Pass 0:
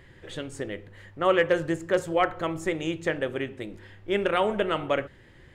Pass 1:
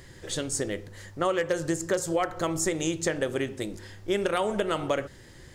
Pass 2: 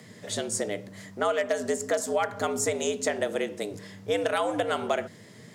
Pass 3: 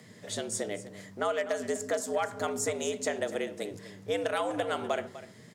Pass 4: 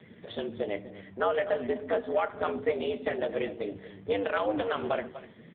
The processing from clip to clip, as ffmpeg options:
-af "highshelf=f=3.9k:t=q:w=1.5:g=11,acompressor=threshold=-26dB:ratio=6,volume=3.5dB"
-af "afreqshift=94"
-af "aecho=1:1:249:0.178,volume=-4dB"
-filter_complex "[0:a]asplit=2[a][b];[b]adelay=13,volume=-12dB[c];[a][c]amix=inputs=2:normalize=0,volume=4dB" -ar 8000 -c:a libopencore_amrnb -b:a 5150

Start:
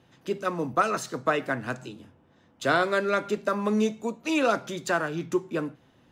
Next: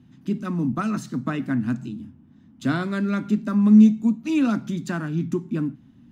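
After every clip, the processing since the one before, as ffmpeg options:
-af "lowshelf=f=340:t=q:w=3:g=12,volume=-5dB"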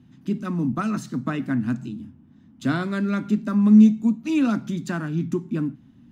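-af anull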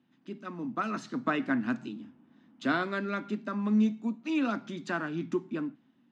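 -af "dynaudnorm=f=210:g=9:m=11.5dB,highpass=370,lowpass=4.2k,volume=-7.5dB"

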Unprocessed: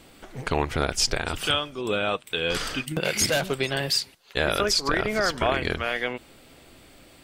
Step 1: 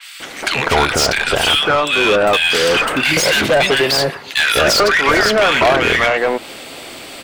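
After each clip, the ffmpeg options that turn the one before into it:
-filter_complex "[0:a]acrossover=split=1500[a][b];[a]adelay=200[c];[c][b]amix=inputs=2:normalize=0,asplit=2[d][e];[e]highpass=f=720:p=1,volume=26dB,asoftclip=type=tanh:threshold=-7.5dB[f];[d][f]amix=inputs=2:normalize=0,lowpass=f=6.4k:p=1,volume=-6dB,adynamicequalizer=threshold=0.0251:dfrequency=3600:dqfactor=0.7:tfrequency=3600:tqfactor=0.7:attack=5:release=100:ratio=0.375:range=2.5:mode=cutabove:tftype=highshelf,volume=3.5dB"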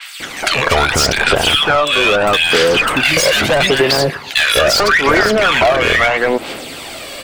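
-af "aphaser=in_gain=1:out_gain=1:delay=1.8:decay=0.45:speed=0.77:type=sinusoidal,acompressor=threshold=-12dB:ratio=6,volume=3dB"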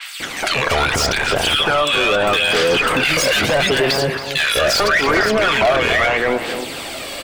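-filter_complex "[0:a]alimiter=limit=-9.5dB:level=0:latency=1:release=47,asplit=2[a][b];[b]adelay=274.1,volume=-9dB,highshelf=f=4k:g=-6.17[c];[a][c]amix=inputs=2:normalize=0"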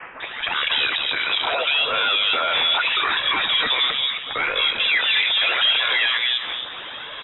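-af "lowpass=f=3.3k:t=q:w=0.5098,lowpass=f=3.3k:t=q:w=0.6013,lowpass=f=3.3k:t=q:w=0.9,lowpass=f=3.3k:t=q:w=2.563,afreqshift=-3900,volume=-4dB"

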